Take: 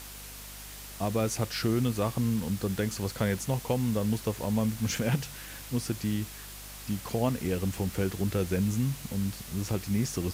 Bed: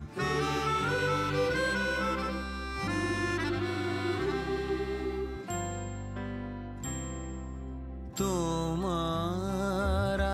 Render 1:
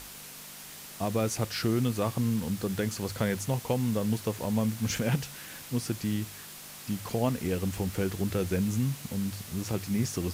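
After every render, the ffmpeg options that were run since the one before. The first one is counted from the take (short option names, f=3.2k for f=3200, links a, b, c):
-af "bandreject=f=50:t=h:w=4,bandreject=f=100:t=h:w=4"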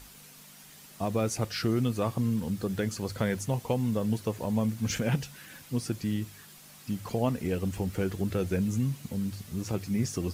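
-af "afftdn=nr=8:nf=-45"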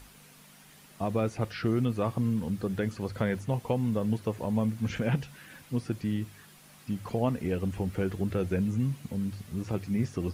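-filter_complex "[0:a]equalizer=f=9.8k:w=6.2:g=5,acrossover=split=3300[a][b];[b]acompressor=threshold=-55dB:ratio=4:attack=1:release=60[c];[a][c]amix=inputs=2:normalize=0"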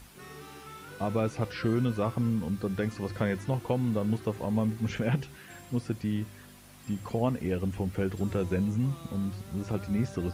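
-filter_complex "[1:a]volume=-17dB[a];[0:a][a]amix=inputs=2:normalize=0"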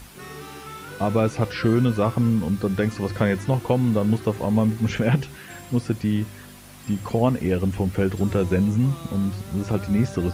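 -af "volume=8dB"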